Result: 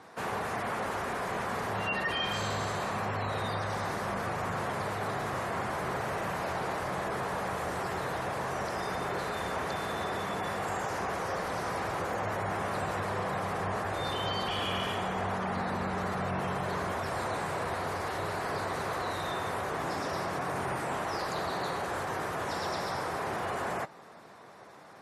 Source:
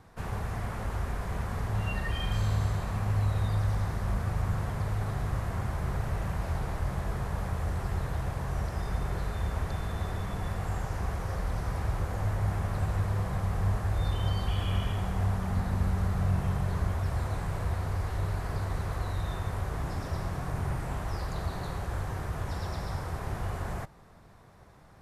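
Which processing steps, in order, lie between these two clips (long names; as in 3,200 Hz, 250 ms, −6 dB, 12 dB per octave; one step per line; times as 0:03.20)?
high-pass filter 300 Hz 12 dB per octave
sine wavefolder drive 4 dB, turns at −25 dBFS
gate on every frequency bin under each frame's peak −30 dB strong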